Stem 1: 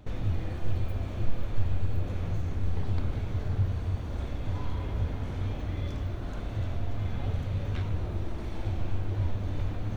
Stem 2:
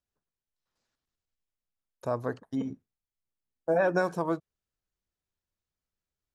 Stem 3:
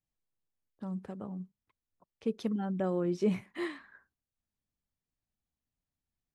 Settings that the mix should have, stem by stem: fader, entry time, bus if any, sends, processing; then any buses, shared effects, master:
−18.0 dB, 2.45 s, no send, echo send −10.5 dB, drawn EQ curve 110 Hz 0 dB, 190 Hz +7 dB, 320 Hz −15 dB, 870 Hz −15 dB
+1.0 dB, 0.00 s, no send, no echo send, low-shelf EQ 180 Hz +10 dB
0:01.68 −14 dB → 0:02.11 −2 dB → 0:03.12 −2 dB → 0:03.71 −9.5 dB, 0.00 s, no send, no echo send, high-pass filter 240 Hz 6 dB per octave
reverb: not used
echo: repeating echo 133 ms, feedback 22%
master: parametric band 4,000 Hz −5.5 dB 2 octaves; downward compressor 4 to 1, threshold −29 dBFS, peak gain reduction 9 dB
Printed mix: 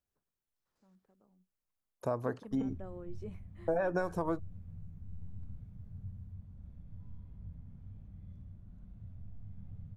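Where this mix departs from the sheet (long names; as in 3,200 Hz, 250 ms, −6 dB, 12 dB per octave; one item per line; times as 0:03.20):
stem 2: missing low-shelf EQ 180 Hz +10 dB
stem 3 −14.0 dB → −25.5 dB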